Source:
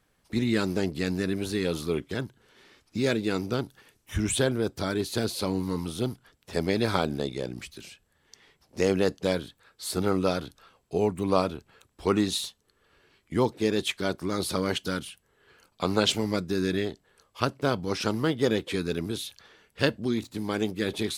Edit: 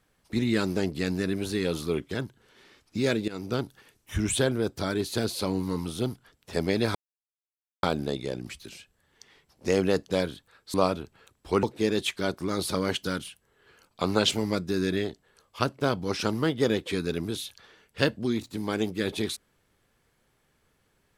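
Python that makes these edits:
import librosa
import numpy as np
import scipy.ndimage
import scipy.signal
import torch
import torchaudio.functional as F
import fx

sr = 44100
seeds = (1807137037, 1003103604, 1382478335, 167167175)

y = fx.edit(x, sr, fx.fade_in_from(start_s=3.28, length_s=0.27, floor_db=-16.5),
    fx.insert_silence(at_s=6.95, length_s=0.88),
    fx.cut(start_s=9.86, length_s=1.42),
    fx.cut(start_s=12.17, length_s=1.27), tone=tone)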